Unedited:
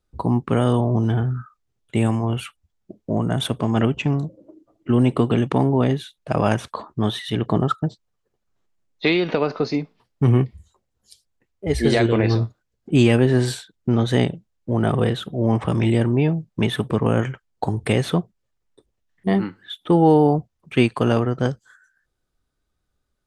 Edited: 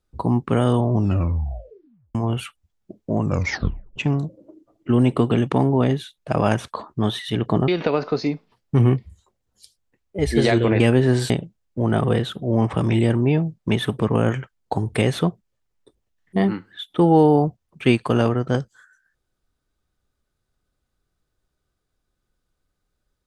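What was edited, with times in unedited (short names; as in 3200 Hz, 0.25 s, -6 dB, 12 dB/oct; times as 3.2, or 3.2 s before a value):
0.93 tape stop 1.22 s
3.18 tape stop 0.78 s
7.68–9.16 cut
12.28–13.06 cut
13.56–14.21 cut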